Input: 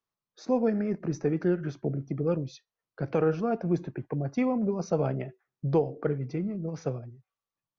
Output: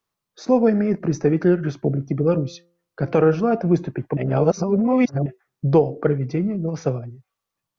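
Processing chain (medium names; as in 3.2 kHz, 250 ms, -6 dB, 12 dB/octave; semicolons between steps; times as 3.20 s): 2.30–3.61 s: de-hum 172.4 Hz, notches 8; 4.17–5.26 s: reverse; trim +9 dB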